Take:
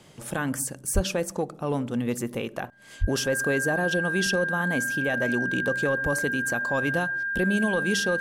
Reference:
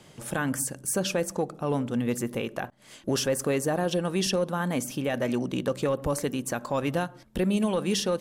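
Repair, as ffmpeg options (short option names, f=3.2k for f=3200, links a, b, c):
-filter_complex "[0:a]bandreject=f=1.6k:w=30,asplit=3[a][b][c];[a]afade=t=out:st=0.94:d=0.02[d];[b]highpass=f=140:w=0.5412,highpass=f=140:w=1.3066,afade=t=in:st=0.94:d=0.02,afade=t=out:st=1.06:d=0.02[e];[c]afade=t=in:st=1.06:d=0.02[f];[d][e][f]amix=inputs=3:normalize=0,asplit=3[g][h][i];[g]afade=t=out:st=3:d=0.02[j];[h]highpass=f=140:w=0.5412,highpass=f=140:w=1.3066,afade=t=in:st=3:d=0.02,afade=t=out:st=3.12:d=0.02[k];[i]afade=t=in:st=3.12:d=0.02[l];[j][k][l]amix=inputs=3:normalize=0"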